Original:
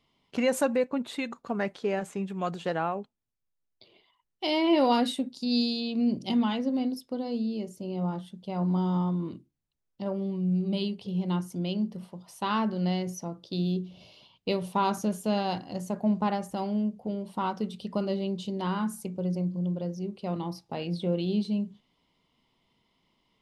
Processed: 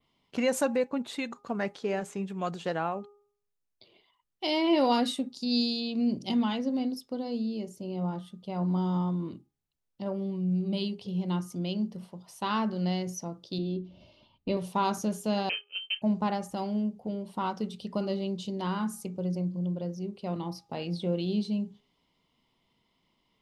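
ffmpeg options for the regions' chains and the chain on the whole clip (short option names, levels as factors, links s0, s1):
-filter_complex "[0:a]asettb=1/sr,asplit=3[s0][s1][s2];[s0]atrim=end=13.584[s3];[s1]atrim=start=13.58:end=14.57,asetpts=PTS-STARTPTS,afade=t=in:d=0.004:c=qsin,afade=t=out:st=0.986:d=0.004:c=qsin,lowpass=f=1400:p=1,asubboost=boost=6:cutoff=250,aecho=1:1:3.3:0.55,atrim=end_sample=43659[s4];[s2]atrim=start=14.566[s5];[s3][s4]acrossfade=d=0.004:c1=hsin:c2=qsin[s6];[s6][s5]acrossfade=d=0.004:c1=qsin:c2=hsin,asettb=1/sr,asplit=3[s7][s8][s9];[s7]atrim=end=15.494[s10];[s8]atrim=start=15.49:end=16.02,asetpts=PTS-STARTPTS,afade=t=in:d=0.004:c=qsin,afade=t=out:st=0.526:d=0.004:c=qsin,agate=range=0.0224:threshold=0.0251:ratio=3:release=100:detection=peak,lowpass=f=2800:t=q:w=0.5098,lowpass=f=2800:t=q:w=0.6013,lowpass=f=2800:t=q:w=0.9,lowpass=f=2800:t=q:w=2.563,afreqshift=-3300[s11];[s9]atrim=start=16.016[s12];[s10][s11]acrossfade=d=0.004:c1=hsin:c2=qsin[s13];[s13][s12]acrossfade=d=0.004:c1=qsin:c2=hsin,adynamicequalizer=threshold=0.00251:dfrequency=5900:dqfactor=1.3:tfrequency=5900:tqfactor=1.3:attack=5:release=100:ratio=0.375:range=2:mode=boostabove:tftype=bell,bandreject=f=409:t=h:w=4,bandreject=f=818:t=h:w=4,bandreject=f=1227:t=h:w=4,volume=0.841"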